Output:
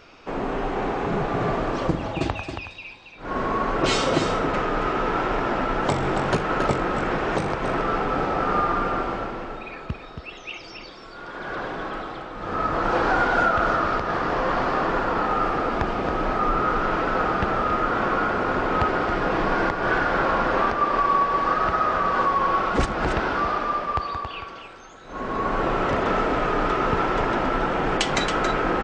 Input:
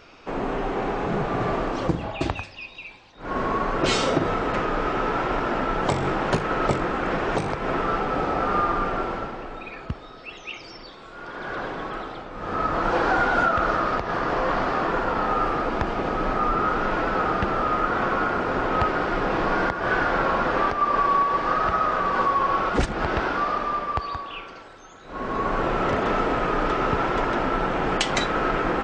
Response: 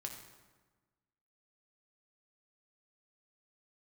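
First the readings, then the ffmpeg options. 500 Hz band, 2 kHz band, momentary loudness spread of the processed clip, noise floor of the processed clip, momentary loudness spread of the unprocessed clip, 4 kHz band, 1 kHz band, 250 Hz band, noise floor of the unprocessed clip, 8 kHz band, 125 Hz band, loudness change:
+0.5 dB, +0.5 dB, 13 LU, -41 dBFS, 14 LU, +0.5 dB, +0.5 dB, +0.5 dB, -43 dBFS, n/a, +0.5 dB, +0.5 dB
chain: -af "aecho=1:1:275:0.422"

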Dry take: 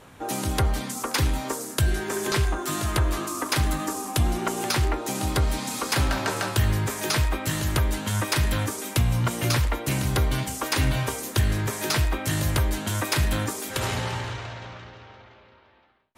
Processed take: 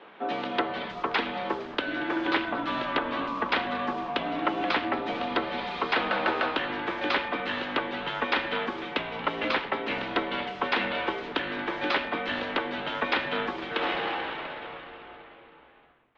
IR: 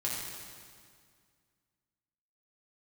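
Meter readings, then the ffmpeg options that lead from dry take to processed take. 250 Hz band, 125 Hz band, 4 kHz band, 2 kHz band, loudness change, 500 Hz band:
-2.5 dB, -23.0 dB, -2.5 dB, +2.0 dB, -3.5 dB, +0.5 dB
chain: -filter_complex "[0:a]highpass=f=350:t=q:w=0.5412,highpass=f=350:t=q:w=1.307,lowpass=f=3.6k:t=q:w=0.5176,lowpass=f=3.6k:t=q:w=0.7071,lowpass=f=3.6k:t=q:w=1.932,afreqshift=-65,asplit=7[a][b][c][d][e][f][g];[b]adelay=230,afreqshift=-98,volume=-18dB[h];[c]adelay=460,afreqshift=-196,volume=-22.2dB[i];[d]adelay=690,afreqshift=-294,volume=-26.3dB[j];[e]adelay=920,afreqshift=-392,volume=-30.5dB[k];[f]adelay=1150,afreqshift=-490,volume=-34.6dB[l];[g]adelay=1380,afreqshift=-588,volume=-38.8dB[m];[a][h][i][j][k][l][m]amix=inputs=7:normalize=0,volume=2dB"

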